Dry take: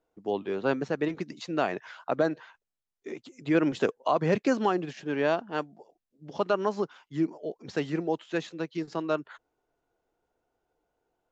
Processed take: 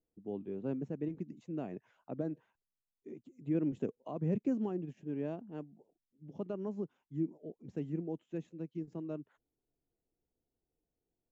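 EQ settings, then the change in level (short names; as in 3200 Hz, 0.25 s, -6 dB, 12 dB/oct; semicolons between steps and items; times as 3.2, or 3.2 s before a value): EQ curve 230 Hz 0 dB, 1400 Hz -24 dB, 2600 Hz -19 dB, 4500 Hz -30 dB, 6700 Hz -18 dB; -3.5 dB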